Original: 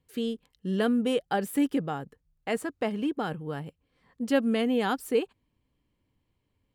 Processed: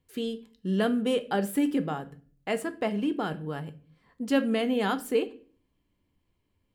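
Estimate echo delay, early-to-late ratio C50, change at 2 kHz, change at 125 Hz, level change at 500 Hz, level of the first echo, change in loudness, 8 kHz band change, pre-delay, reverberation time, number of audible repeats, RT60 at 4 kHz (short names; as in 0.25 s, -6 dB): none, 17.5 dB, +0.5 dB, +1.5 dB, 0.0 dB, none, 0.0 dB, +0.5 dB, 3 ms, 0.45 s, none, 0.35 s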